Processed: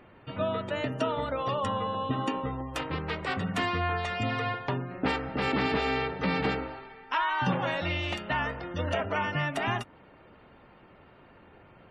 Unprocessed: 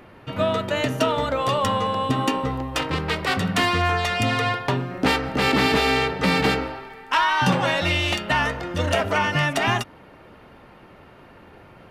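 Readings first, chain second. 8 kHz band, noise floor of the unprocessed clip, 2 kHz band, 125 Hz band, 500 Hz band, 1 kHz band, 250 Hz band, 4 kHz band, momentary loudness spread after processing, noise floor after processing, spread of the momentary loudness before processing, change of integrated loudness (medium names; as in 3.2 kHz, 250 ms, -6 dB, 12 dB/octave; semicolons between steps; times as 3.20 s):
-16.0 dB, -48 dBFS, -9.0 dB, -7.5 dB, -7.5 dB, -8.0 dB, -7.5 dB, -11.5 dB, 6 LU, -56 dBFS, 7 LU, -8.5 dB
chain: spectral gate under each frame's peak -30 dB strong; dynamic bell 5.1 kHz, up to -7 dB, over -39 dBFS, Q 0.91; trim -7.5 dB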